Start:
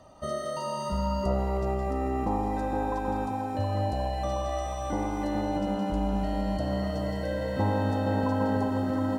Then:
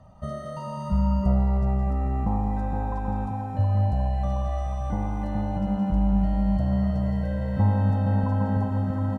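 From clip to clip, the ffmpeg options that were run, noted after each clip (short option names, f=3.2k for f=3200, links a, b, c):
-af "firequalizer=gain_entry='entry(190,0);entry(300,-18);entry(720,-10);entry(4100,-19)':delay=0.05:min_phase=1,volume=8.5dB"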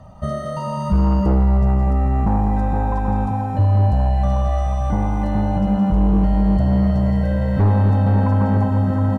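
-af "aeval=exprs='0.299*sin(PI/2*1.78*val(0)/0.299)':c=same"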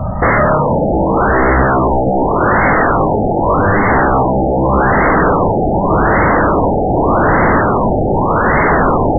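-af "aeval=exprs='0.316*sin(PI/2*7.08*val(0)/0.316)':c=same,afftfilt=real='re*lt(b*sr/1024,850*pow(2200/850,0.5+0.5*sin(2*PI*0.84*pts/sr)))':imag='im*lt(b*sr/1024,850*pow(2200/850,0.5+0.5*sin(2*PI*0.84*pts/sr)))':win_size=1024:overlap=0.75,volume=3dB"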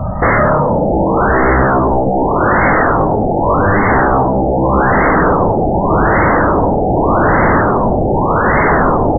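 -filter_complex "[0:a]asplit=2[a][b];[b]adelay=100,lowpass=f=1.2k:p=1,volume=-14dB,asplit=2[c][d];[d]adelay=100,lowpass=f=1.2k:p=1,volume=0.41,asplit=2[e][f];[f]adelay=100,lowpass=f=1.2k:p=1,volume=0.41,asplit=2[g][h];[h]adelay=100,lowpass=f=1.2k:p=1,volume=0.41[i];[a][c][e][g][i]amix=inputs=5:normalize=0"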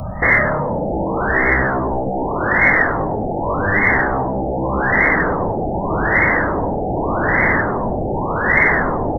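-af "aexciter=amount=14.5:drive=1.7:freq=2k,volume=-7.5dB"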